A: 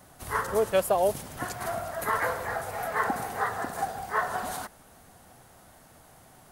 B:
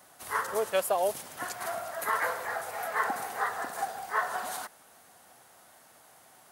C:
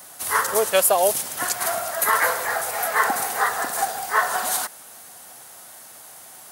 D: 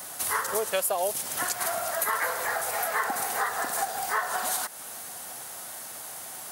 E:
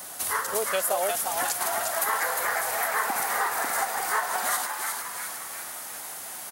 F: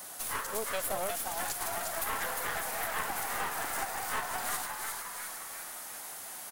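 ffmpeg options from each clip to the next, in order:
-af "highpass=f=690:p=1"
-af "highshelf=f=3.8k:g=10,volume=8dB"
-af "acompressor=threshold=-32dB:ratio=3,volume=3.5dB"
-filter_complex "[0:a]equalizer=f=130:t=o:w=0.23:g=-7,asplit=8[a][b][c][d][e][f][g][h];[b]adelay=354,afreqshift=130,volume=-4.5dB[i];[c]adelay=708,afreqshift=260,volume=-9.7dB[j];[d]adelay=1062,afreqshift=390,volume=-14.9dB[k];[e]adelay=1416,afreqshift=520,volume=-20.1dB[l];[f]adelay=1770,afreqshift=650,volume=-25.3dB[m];[g]adelay=2124,afreqshift=780,volume=-30.5dB[n];[h]adelay=2478,afreqshift=910,volume=-35.7dB[o];[a][i][j][k][l][m][n][o]amix=inputs=8:normalize=0"
-af "aeval=exprs='clip(val(0),-1,0.02)':c=same,volume=-5dB"

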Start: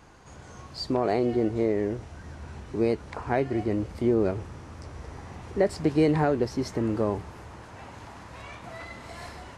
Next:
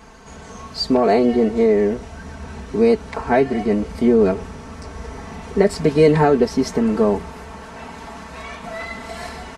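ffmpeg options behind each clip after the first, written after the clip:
-af "aecho=1:1:4.5:0.9,volume=7dB"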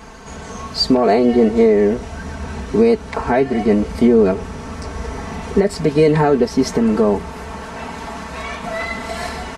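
-af "alimiter=limit=-10dB:level=0:latency=1:release=430,volume=6dB"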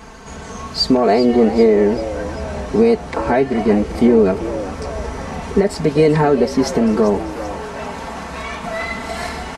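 -filter_complex "[0:a]asplit=6[a][b][c][d][e][f];[b]adelay=391,afreqshift=100,volume=-13.5dB[g];[c]adelay=782,afreqshift=200,volume=-18.9dB[h];[d]adelay=1173,afreqshift=300,volume=-24.2dB[i];[e]adelay=1564,afreqshift=400,volume=-29.6dB[j];[f]adelay=1955,afreqshift=500,volume=-34.9dB[k];[a][g][h][i][j][k]amix=inputs=6:normalize=0"

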